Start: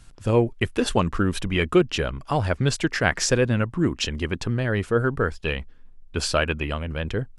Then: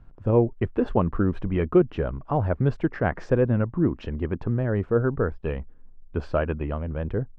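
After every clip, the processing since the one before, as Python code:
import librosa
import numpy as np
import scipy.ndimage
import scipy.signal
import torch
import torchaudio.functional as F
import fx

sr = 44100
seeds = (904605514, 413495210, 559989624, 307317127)

y = scipy.signal.sosfilt(scipy.signal.butter(2, 1000.0, 'lowpass', fs=sr, output='sos'), x)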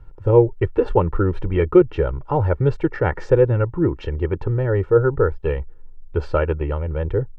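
y = x + 0.83 * np.pad(x, (int(2.2 * sr / 1000.0), 0))[:len(x)]
y = y * 10.0 ** (3.0 / 20.0)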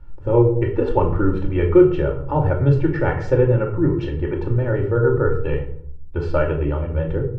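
y = fx.room_shoebox(x, sr, seeds[0], volume_m3=790.0, walls='furnished', distance_m=2.5)
y = y * 10.0 ** (-3.0 / 20.0)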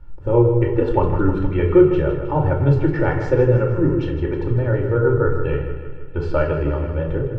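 y = fx.echo_feedback(x, sr, ms=157, feedback_pct=58, wet_db=-10)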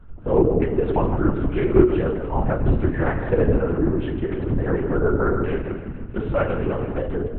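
y = fx.lpc_vocoder(x, sr, seeds[1], excitation='whisper', order=8)
y = y * 10.0 ** (-3.0 / 20.0)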